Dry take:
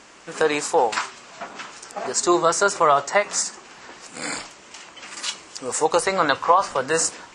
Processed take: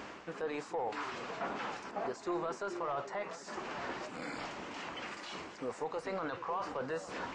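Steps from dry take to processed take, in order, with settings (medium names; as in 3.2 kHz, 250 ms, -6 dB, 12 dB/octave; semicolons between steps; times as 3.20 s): high-pass 44 Hz; treble shelf 3.9 kHz +6 dB; reverse; compression 4:1, threshold -34 dBFS, peak gain reduction 19.5 dB; reverse; peak limiter -29.5 dBFS, peak gain reduction 11.5 dB; saturation -32 dBFS, distortion -19 dB; tape spacing loss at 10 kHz 32 dB; on a send: repeats whose band climbs or falls 431 ms, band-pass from 280 Hz, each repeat 1.4 oct, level -6 dB; on the sum: trim +6.5 dB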